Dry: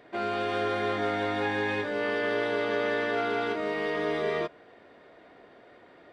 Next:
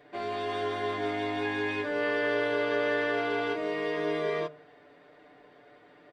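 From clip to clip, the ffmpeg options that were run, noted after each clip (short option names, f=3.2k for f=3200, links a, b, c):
-af "aecho=1:1:6.8:0.9,bandreject=f=76.12:t=h:w=4,bandreject=f=152.24:t=h:w=4,bandreject=f=228.36:t=h:w=4,bandreject=f=304.48:t=h:w=4,bandreject=f=380.6:t=h:w=4,bandreject=f=456.72:t=h:w=4,bandreject=f=532.84:t=h:w=4,bandreject=f=608.96:t=h:w=4,bandreject=f=685.08:t=h:w=4,bandreject=f=761.2:t=h:w=4,bandreject=f=837.32:t=h:w=4,bandreject=f=913.44:t=h:w=4,bandreject=f=989.56:t=h:w=4,bandreject=f=1.06568k:t=h:w=4,bandreject=f=1.1418k:t=h:w=4,bandreject=f=1.21792k:t=h:w=4,volume=-4.5dB"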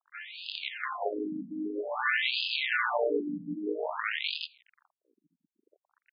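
-af "acrusher=bits=5:dc=4:mix=0:aa=0.000001,aeval=exprs='sgn(val(0))*max(abs(val(0))-0.00398,0)':c=same,afftfilt=real='re*between(b*sr/1024,210*pow(3600/210,0.5+0.5*sin(2*PI*0.51*pts/sr))/1.41,210*pow(3600/210,0.5+0.5*sin(2*PI*0.51*pts/sr))*1.41)':imag='im*between(b*sr/1024,210*pow(3600/210,0.5+0.5*sin(2*PI*0.51*pts/sr))/1.41,210*pow(3600/210,0.5+0.5*sin(2*PI*0.51*pts/sr))*1.41)':win_size=1024:overlap=0.75,volume=7dB"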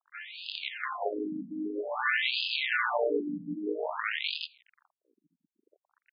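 -af anull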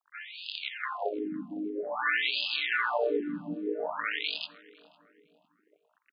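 -filter_complex "[0:a]asplit=2[a][b];[b]adelay=506,lowpass=f=1.4k:p=1,volume=-20.5dB,asplit=2[c][d];[d]adelay=506,lowpass=f=1.4k:p=1,volume=0.5,asplit=2[e][f];[f]adelay=506,lowpass=f=1.4k:p=1,volume=0.5,asplit=2[g][h];[h]adelay=506,lowpass=f=1.4k:p=1,volume=0.5[i];[a][c][e][g][i]amix=inputs=5:normalize=0"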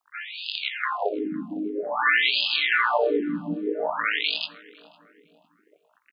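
-filter_complex "[0:a]asplit=2[a][b];[b]adelay=18,volume=-11dB[c];[a][c]amix=inputs=2:normalize=0,volume=7dB"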